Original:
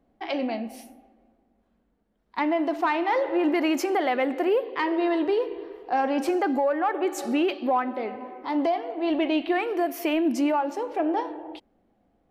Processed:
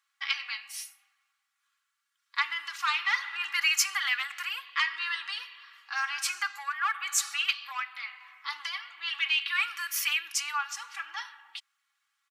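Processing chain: elliptic high-pass 1.2 kHz, stop band 50 dB; peaking EQ 7 kHz +9 dB 1.6 oct; comb 3.6 ms, depth 66%; trim +3 dB

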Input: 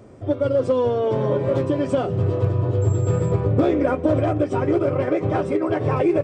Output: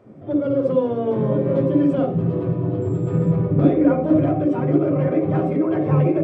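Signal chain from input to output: tone controls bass -8 dB, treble -13 dB; on a send: reverberation RT60 0.25 s, pre-delay 46 ms, DRR 3.5 dB; on the sum: trim -4.5 dB

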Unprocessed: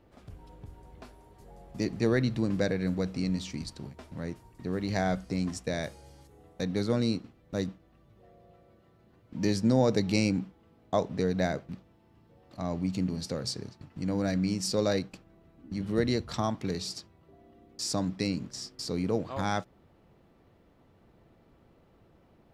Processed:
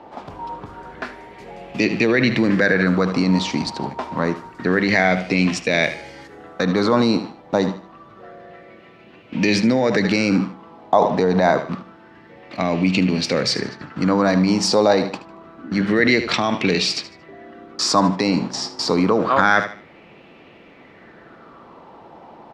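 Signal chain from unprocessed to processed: three-band isolator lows -17 dB, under 170 Hz, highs -18 dB, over 6.1 kHz; feedback delay 76 ms, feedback 30%, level -15 dB; loudness maximiser +25 dB; sweeping bell 0.27 Hz 860–2600 Hz +14 dB; trim -8.5 dB

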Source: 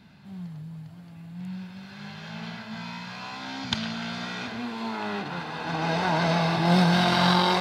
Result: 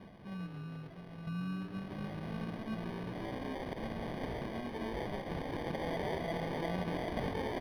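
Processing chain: bass shelf 300 Hz -11 dB; peak limiter -17 dBFS, peak gain reduction 7 dB; 1.27–3.55 s: tilt EQ -3.5 dB/octave; compression 3:1, threshold -43 dBFS, peak gain reduction 14.5 dB; reverb removal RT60 0.59 s; sample-and-hold 33×; boxcar filter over 6 samples; frequency-shifting echo 137 ms, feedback 49%, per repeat +110 Hz, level -14 dB; trim +6 dB

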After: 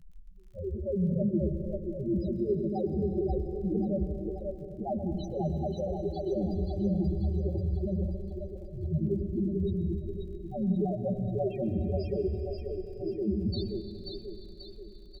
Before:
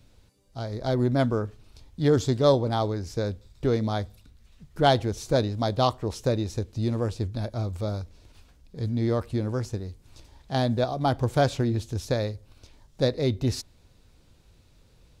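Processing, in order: sawtooth pitch modulation -7.5 st, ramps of 374 ms; comb 5.3 ms, depth 53%; reverse; compression 12:1, threshold -32 dBFS, peak gain reduction 18 dB; reverse; loudest bins only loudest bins 2; crackle 34 per s -63 dBFS; on a send: two-band feedback delay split 330 Hz, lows 91 ms, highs 535 ms, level -3 dB; on the sum: plate-style reverb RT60 3.5 s, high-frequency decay 0.95×, pre-delay 105 ms, DRR 8.5 dB; trim +8.5 dB

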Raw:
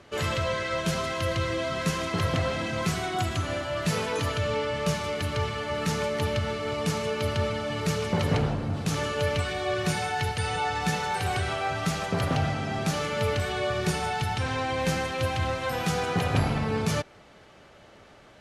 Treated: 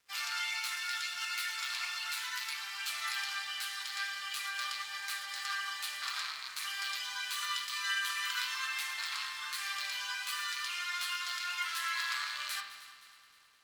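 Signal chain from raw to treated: rattle on loud lows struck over -26 dBFS, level -21 dBFS; flange 0.31 Hz, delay 8.9 ms, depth 2 ms, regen +52%; formant shift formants +4 st; Chebyshev high-pass 890 Hz, order 4; spring tank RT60 1.2 s, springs 32 ms, chirp 75 ms, DRR 4 dB; speed mistake 33 rpm record played at 45 rpm; crossover distortion -58 dBFS; multi-head delay 104 ms, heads second and third, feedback 54%, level -16.5 dB; trim -1.5 dB

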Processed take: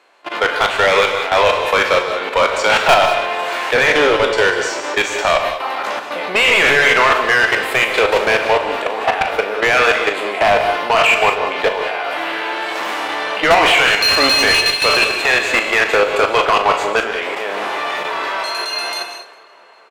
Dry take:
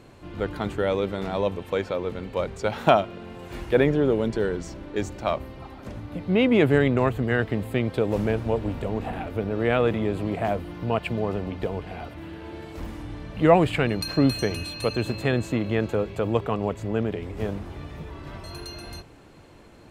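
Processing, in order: spectral sustain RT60 0.36 s; gate with hold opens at -33 dBFS; high-pass 670 Hz 12 dB/octave; dynamic bell 2.6 kHz, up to +7 dB, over -43 dBFS, Q 1.1; level held to a coarse grid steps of 16 dB; overdrive pedal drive 33 dB, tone 3 kHz, clips at -4 dBFS; doubling 39 ms -11 dB; on a send: tape echo 404 ms, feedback 74%, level -22 dB, low-pass 3.6 kHz; on the sum: gated-style reverb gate 220 ms rising, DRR 7 dB; trim +1.5 dB

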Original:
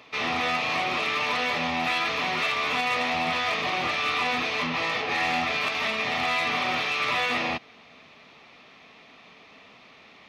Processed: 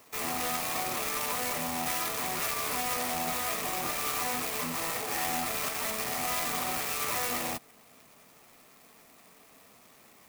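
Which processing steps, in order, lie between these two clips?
sampling jitter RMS 0.088 ms; trim -5.5 dB

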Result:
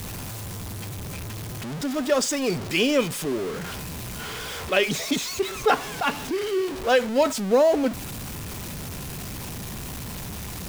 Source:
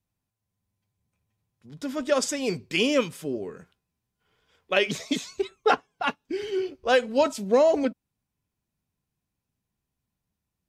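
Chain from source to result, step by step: jump at every zero crossing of -27.5 dBFS

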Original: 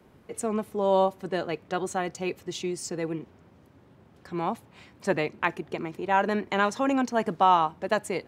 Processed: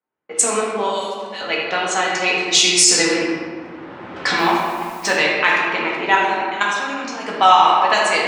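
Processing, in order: recorder AGC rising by 12 dB/s; gate -44 dBFS, range -32 dB; frequency weighting ITU-R 468; level-controlled noise filter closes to 1.4 kHz, open at -18.5 dBFS; 0.87–1.41 s: differentiator; 4.37–5.12 s: added noise white -54 dBFS; 6.15–7.25 s: level held to a coarse grid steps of 20 dB; tape echo 78 ms, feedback 73%, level -7 dB, low-pass 2.3 kHz; reverberation RT60 1.6 s, pre-delay 4 ms, DRR -4.5 dB; loudness maximiser +6.5 dB; trim -1 dB

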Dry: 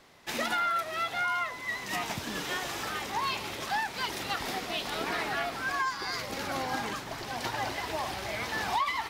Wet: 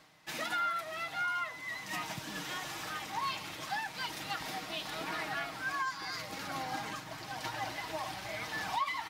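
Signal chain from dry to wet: high-pass 54 Hz; peaking EQ 430 Hz -7 dB 0.54 oct; comb 6.4 ms, depth 52%; reverse; upward compressor, threshold -41 dBFS; reverse; trim -6 dB

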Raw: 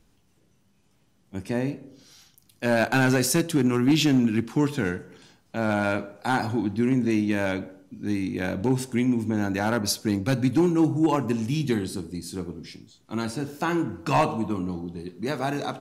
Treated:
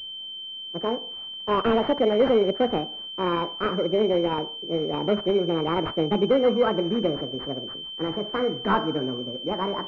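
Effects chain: gliding tape speed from 181% -> 139%; class-D stage that switches slowly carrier 3.1 kHz; trim +1 dB

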